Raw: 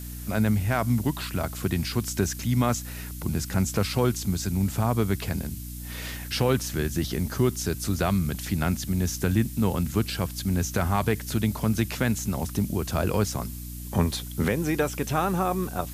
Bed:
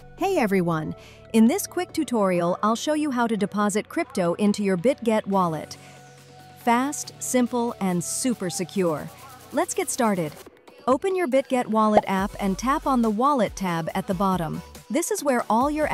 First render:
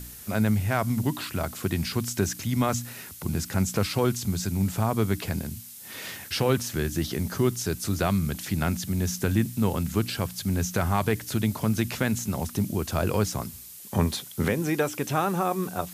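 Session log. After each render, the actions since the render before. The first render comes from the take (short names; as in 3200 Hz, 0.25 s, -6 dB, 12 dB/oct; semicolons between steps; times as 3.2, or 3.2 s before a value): de-hum 60 Hz, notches 5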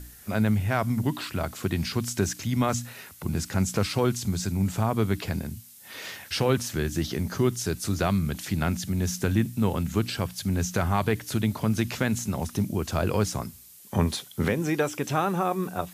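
noise print and reduce 6 dB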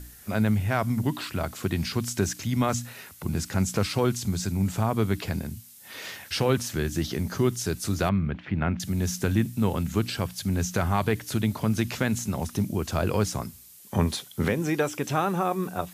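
8.09–8.8 LPF 2600 Hz 24 dB/oct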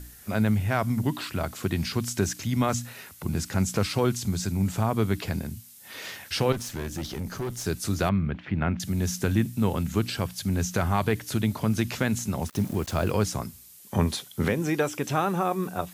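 6.52–7.66 tube stage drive 27 dB, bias 0.5; 12.47–13.12 sample gate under -39 dBFS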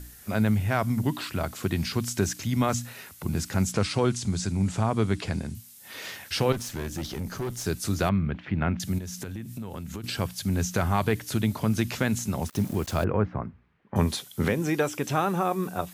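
3.72–5.55 steep low-pass 10000 Hz; 8.98–10.04 compressor 8:1, threshold -32 dBFS; 13.04–13.96 LPF 1900 Hz 24 dB/oct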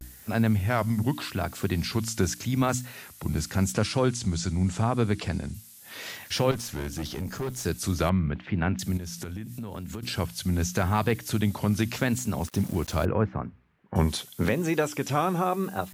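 vibrato 0.84 Hz 96 cents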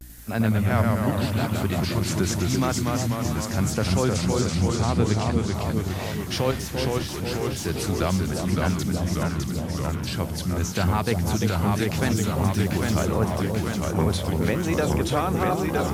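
echo with dull and thin repeats by turns 0.343 s, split 920 Hz, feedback 58%, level -5 dB; echoes that change speed 85 ms, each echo -1 st, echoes 3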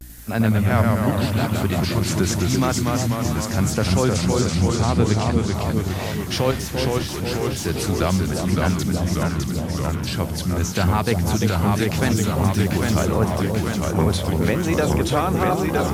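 gain +3.5 dB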